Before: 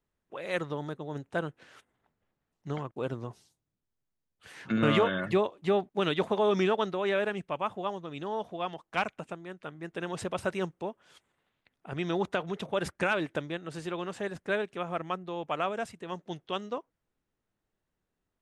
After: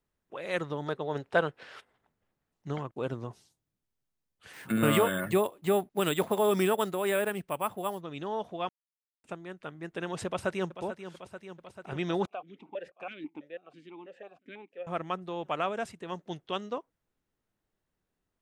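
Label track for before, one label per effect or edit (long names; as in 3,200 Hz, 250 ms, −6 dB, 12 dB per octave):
0.860000	1.980000	gain on a spectral selection 380–5,600 Hz +7 dB
4.530000	8.010000	bad sample-rate conversion rate divided by 4×, down none, up hold
8.690000	9.240000	silence
10.260000	10.820000	delay throw 440 ms, feedback 75%, level −11 dB
12.260000	14.870000	formant filter that steps through the vowels 6.1 Hz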